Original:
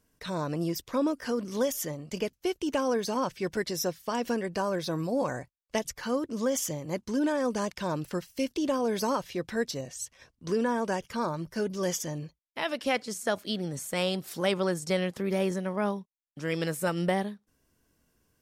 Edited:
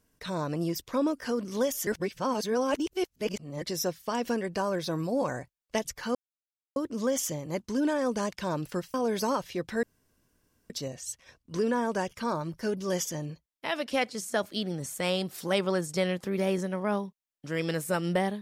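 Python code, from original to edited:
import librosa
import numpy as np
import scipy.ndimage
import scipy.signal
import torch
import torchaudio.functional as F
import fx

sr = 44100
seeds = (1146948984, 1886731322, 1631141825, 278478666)

y = fx.edit(x, sr, fx.reverse_span(start_s=1.87, length_s=1.75),
    fx.insert_silence(at_s=6.15, length_s=0.61),
    fx.cut(start_s=8.33, length_s=0.41),
    fx.insert_room_tone(at_s=9.63, length_s=0.87), tone=tone)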